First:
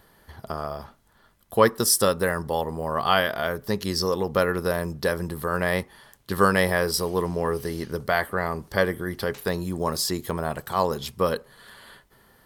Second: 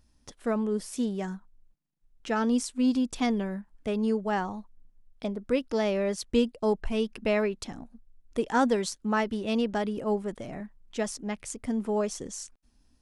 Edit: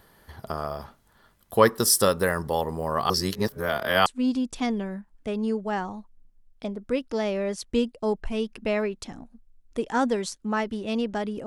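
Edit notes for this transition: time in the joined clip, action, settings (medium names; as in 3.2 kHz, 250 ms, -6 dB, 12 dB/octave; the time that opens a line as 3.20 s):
first
3.10–4.06 s: reverse
4.06 s: go over to second from 2.66 s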